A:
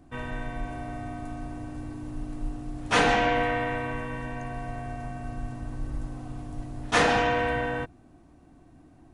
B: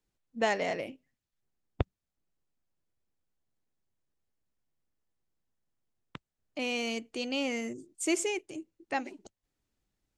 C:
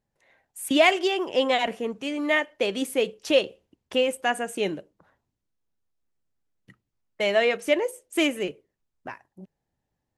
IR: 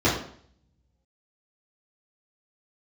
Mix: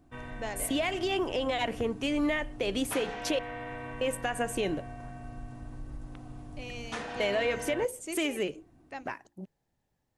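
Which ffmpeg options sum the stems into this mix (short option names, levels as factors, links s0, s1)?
-filter_complex "[0:a]acompressor=threshold=0.0398:ratio=10,volume=0.447[s0];[1:a]bandreject=f=57.98:t=h:w=4,bandreject=f=115.96:t=h:w=4,bandreject=f=173.94:t=h:w=4,bandreject=f=231.92:t=h:w=4,bandreject=f=289.9:t=h:w=4,bandreject=f=347.88:t=h:w=4,volume=0.335[s1];[2:a]acompressor=threshold=0.0794:ratio=6,volume=1.19,asplit=3[s2][s3][s4];[s2]atrim=end=3.39,asetpts=PTS-STARTPTS,afade=t=out:st=3.386:d=0.004:c=hsin[s5];[s3]atrim=start=3.39:end=4.01,asetpts=PTS-STARTPTS,volume=0[s6];[s4]atrim=start=4.01,asetpts=PTS-STARTPTS,afade=t=in:d=0.004:c=hsin[s7];[s5][s6][s7]concat=n=3:v=0:a=1[s8];[s1][s8]amix=inputs=2:normalize=0,alimiter=limit=0.0891:level=0:latency=1:release=146,volume=1[s9];[s0][s9]amix=inputs=2:normalize=0"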